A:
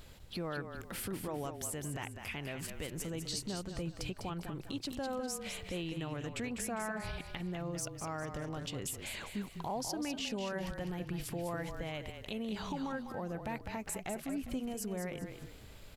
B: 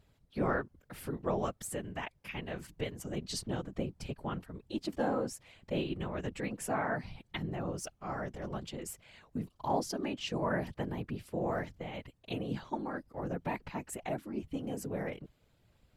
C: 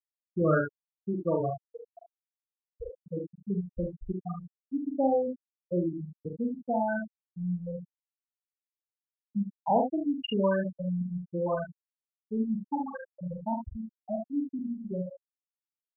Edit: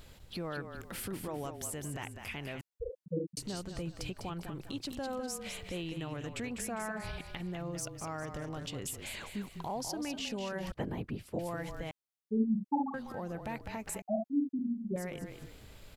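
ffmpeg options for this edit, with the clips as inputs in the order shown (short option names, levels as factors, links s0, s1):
-filter_complex "[2:a]asplit=3[s0][s1][s2];[0:a]asplit=5[s3][s4][s5][s6][s7];[s3]atrim=end=2.612[s8];[s0]atrim=start=2.608:end=3.372[s9];[s4]atrim=start=3.368:end=10.722[s10];[1:a]atrim=start=10.718:end=11.392[s11];[s5]atrim=start=11.388:end=11.912[s12];[s1]atrim=start=11.908:end=12.942[s13];[s6]atrim=start=12.938:end=14.022[s14];[s2]atrim=start=14.018:end=14.962[s15];[s7]atrim=start=14.958[s16];[s8][s9]acrossfade=d=0.004:c1=hsin:c2=hsin[s17];[s17][s10]acrossfade=d=0.004:c1=hsin:c2=hsin[s18];[s18][s11]acrossfade=d=0.004:c1=hsin:c2=hsin[s19];[s19][s12]acrossfade=d=0.004:c1=hsin:c2=hsin[s20];[s20][s13]acrossfade=d=0.004:c1=hsin:c2=hsin[s21];[s21][s14]acrossfade=d=0.004:c1=hsin:c2=hsin[s22];[s22][s15]acrossfade=d=0.004:c1=hsin:c2=hsin[s23];[s23][s16]acrossfade=d=0.004:c1=hsin:c2=hsin"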